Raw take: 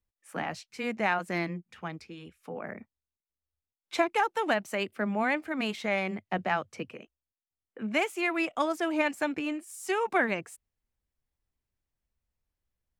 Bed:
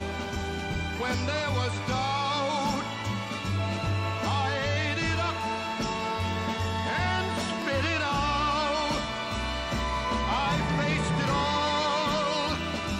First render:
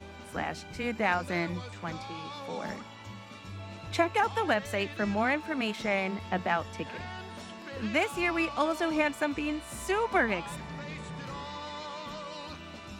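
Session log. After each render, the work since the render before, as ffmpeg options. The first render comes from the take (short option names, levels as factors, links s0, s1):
-filter_complex "[1:a]volume=0.211[s0];[0:a][s0]amix=inputs=2:normalize=0"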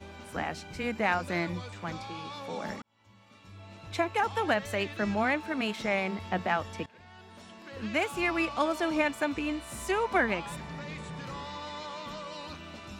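-filter_complex "[0:a]asplit=3[s0][s1][s2];[s0]atrim=end=2.82,asetpts=PTS-STARTPTS,afade=t=out:st=2.816:d=0.004:c=hsin[s3];[s1]atrim=start=2.82:end=6.86,asetpts=PTS-STARTPTS,afade=t=in:d=1.64,afade=t=out:st=4.036:d=0.004:c=hsin:silence=0.1[s4];[s2]atrim=start=6.86,asetpts=PTS-STARTPTS,afade=t=in:d=1.36:silence=0.1[s5];[s3][s4][s5]concat=n=3:v=0:a=1"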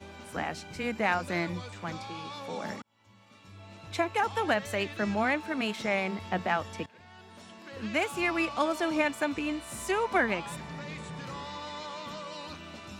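-af "highpass=73,equalizer=f=8500:t=o:w=1.4:g=2"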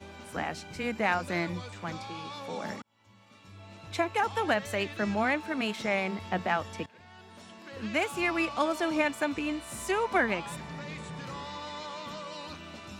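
-af anull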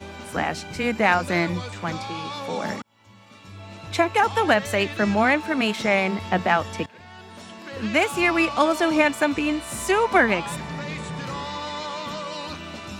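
-af "volume=2.66"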